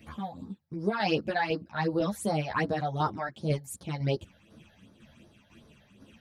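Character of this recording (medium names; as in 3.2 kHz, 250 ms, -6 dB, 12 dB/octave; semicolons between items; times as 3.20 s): phasing stages 8, 2.7 Hz, lowest notch 320–2700 Hz; tremolo saw down 2 Hz, depth 50%; a shimmering, thickened sound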